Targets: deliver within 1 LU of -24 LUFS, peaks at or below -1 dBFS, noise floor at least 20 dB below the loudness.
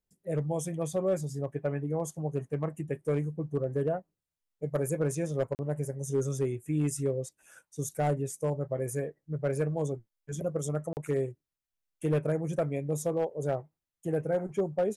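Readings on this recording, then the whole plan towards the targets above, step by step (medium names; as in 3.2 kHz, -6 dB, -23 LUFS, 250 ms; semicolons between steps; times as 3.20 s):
clipped samples 0.5%; clipping level -21.0 dBFS; dropouts 2; longest dropout 39 ms; loudness -32.5 LUFS; peak level -21.0 dBFS; loudness target -24.0 LUFS
-> clip repair -21 dBFS; interpolate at 5.55/10.93 s, 39 ms; trim +8.5 dB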